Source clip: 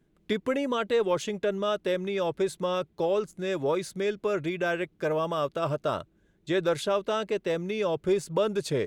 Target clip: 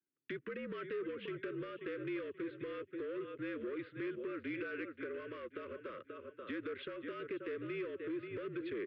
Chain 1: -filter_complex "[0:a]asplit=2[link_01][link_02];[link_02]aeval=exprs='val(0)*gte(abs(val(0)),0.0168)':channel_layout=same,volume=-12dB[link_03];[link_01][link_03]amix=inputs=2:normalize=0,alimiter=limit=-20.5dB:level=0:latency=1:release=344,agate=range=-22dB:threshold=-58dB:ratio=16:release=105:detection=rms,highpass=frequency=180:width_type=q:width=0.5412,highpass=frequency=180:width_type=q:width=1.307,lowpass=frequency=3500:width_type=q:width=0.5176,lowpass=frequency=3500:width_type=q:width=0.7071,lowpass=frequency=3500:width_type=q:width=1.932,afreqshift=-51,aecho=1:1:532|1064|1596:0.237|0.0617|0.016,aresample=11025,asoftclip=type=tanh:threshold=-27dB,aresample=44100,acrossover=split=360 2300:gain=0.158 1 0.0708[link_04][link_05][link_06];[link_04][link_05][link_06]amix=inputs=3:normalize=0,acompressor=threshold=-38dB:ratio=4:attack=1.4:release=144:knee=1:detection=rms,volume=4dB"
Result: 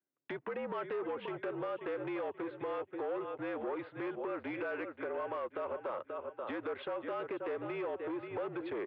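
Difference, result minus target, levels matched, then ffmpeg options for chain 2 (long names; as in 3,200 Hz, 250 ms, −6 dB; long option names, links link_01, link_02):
1,000 Hz band +7.0 dB
-filter_complex "[0:a]asplit=2[link_01][link_02];[link_02]aeval=exprs='val(0)*gte(abs(val(0)),0.0168)':channel_layout=same,volume=-12dB[link_03];[link_01][link_03]amix=inputs=2:normalize=0,alimiter=limit=-20.5dB:level=0:latency=1:release=344,agate=range=-22dB:threshold=-58dB:ratio=16:release=105:detection=rms,highpass=frequency=180:width_type=q:width=0.5412,highpass=frequency=180:width_type=q:width=1.307,lowpass=frequency=3500:width_type=q:width=0.5176,lowpass=frequency=3500:width_type=q:width=0.7071,lowpass=frequency=3500:width_type=q:width=1.932,afreqshift=-51,aecho=1:1:532|1064|1596:0.237|0.0617|0.016,aresample=11025,asoftclip=type=tanh:threshold=-27dB,aresample=44100,acrossover=split=360 2300:gain=0.158 1 0.0708[link_04][link_05][link_06];[link_04][link_05][link_06]amix=inputs=3:normalize=0,acompressor=threshold=-38dB:ratio=4:attack=1.4:release=144:knee=1:detection=rms,asuperstop=centerf=800:order=4:qfactor=0.77,volume=4dB"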